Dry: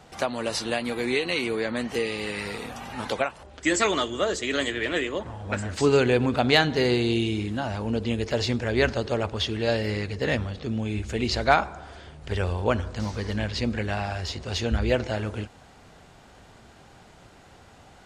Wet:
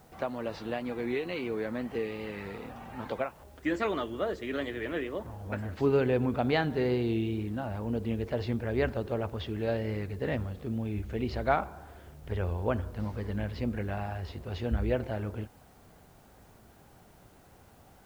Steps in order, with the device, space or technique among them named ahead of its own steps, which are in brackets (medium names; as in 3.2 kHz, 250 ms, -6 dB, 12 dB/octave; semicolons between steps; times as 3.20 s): cassette deck with a dirty head (tape spacing loss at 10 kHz 34 dB; wow and flutter; white noise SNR 34 dB); trim -4 dB